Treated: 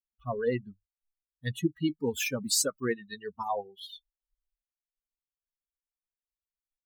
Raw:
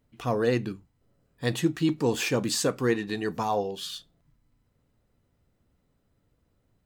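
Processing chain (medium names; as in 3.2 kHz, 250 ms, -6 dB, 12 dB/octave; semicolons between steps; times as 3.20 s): expander on every frequency bin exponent 3; 1.80–3.80 s: peaking EQ 13 kHz +9.5 dB 2 oct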